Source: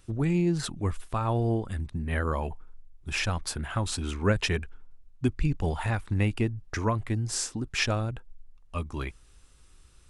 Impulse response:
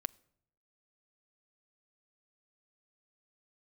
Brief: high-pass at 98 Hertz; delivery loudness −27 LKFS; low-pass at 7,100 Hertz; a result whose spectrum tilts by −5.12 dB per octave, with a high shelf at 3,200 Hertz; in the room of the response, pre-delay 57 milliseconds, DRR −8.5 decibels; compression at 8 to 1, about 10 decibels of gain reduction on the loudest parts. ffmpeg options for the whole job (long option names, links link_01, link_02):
-filter_complex "[0:a]highpass=98,lowpass=7100,highshelf=frequency=3200:gain=-5,acompressor=threshold=-31dB:ratio=8,asplit=2[link_01][link_02];[1:a]atrim=start_sample=2205,adelay=57[link_03];[link_02][link_03]afir=irnorm=-1:irlink=0,volume=10dB[link_04];[link_01][link_04]amix=inputs=2:normalize=0,volume=1.5dB"